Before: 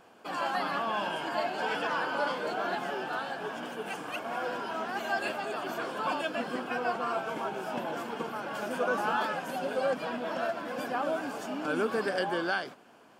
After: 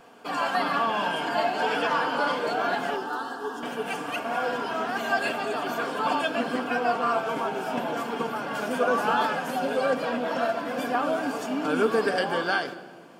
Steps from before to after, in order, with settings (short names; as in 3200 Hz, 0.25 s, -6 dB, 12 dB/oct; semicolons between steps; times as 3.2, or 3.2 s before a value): 2.96–3.63 fixed phaser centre 610 Hz, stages 6; on a send: reverb RT60 1.6 s, pre-delay 4 ms, DRR 5 dB; on the sum: gain +4.5 dB